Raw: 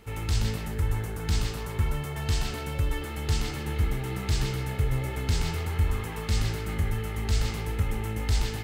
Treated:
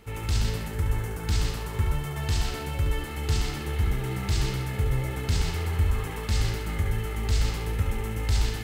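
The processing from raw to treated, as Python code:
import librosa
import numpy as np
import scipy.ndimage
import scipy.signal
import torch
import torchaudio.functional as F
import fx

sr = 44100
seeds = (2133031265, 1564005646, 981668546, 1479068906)

y = x + 10.0 ** (-6.5 / 20.0) * np.pad(x, (int(71 * sr / 1000.0), 0))[:len(x)]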